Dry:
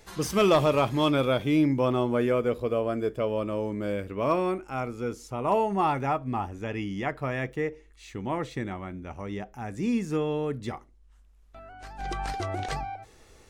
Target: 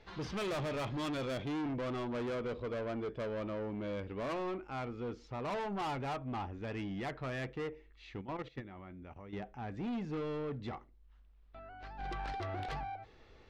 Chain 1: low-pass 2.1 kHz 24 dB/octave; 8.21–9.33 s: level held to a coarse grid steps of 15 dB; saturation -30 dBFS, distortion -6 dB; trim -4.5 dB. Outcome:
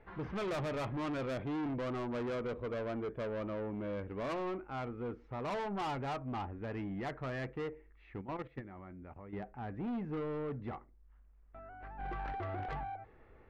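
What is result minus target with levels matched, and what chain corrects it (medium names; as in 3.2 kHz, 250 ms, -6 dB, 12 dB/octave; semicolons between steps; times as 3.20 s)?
4 kHz band -4.0 dB
low-pass 4.2 kHz 24 dB/octave; 8.21–9.33 s: level held to a coarse grid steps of 15 dB; saturation -30 dBFS, distortion -6 dB; trim -4.5 dB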